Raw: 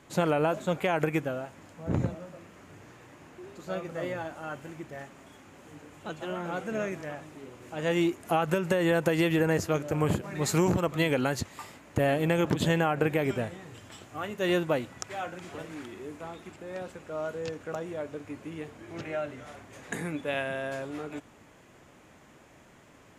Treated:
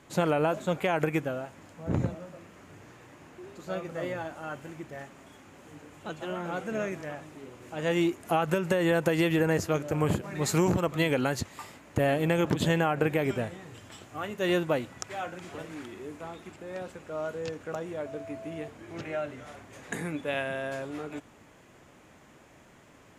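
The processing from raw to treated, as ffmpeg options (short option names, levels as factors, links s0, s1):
-filter_complex "[0:a]asettb=1/sr,asplit=3[s0][s1][s2];[s0]atrim=end=18.064[s3];[s1]atrim=start=18.06:end=18.68,asetpts=PTS-STARTPTS,afade=t=in:d=0.004:c=qsin,afade=t=out:st=0.616:d=0.004:c=qsin,aeval=exprs='val(0)+0.01*sin(2*PI*660*n/s)':c=same[s4];[s2]atrim=start=18.676[s5];[s3][s4]acrossfade=d=0.004:c1=hsin:c2=qsin[s6];[s6][s5]acrossfade=d=0.004:c1=qsin:c2=hsin"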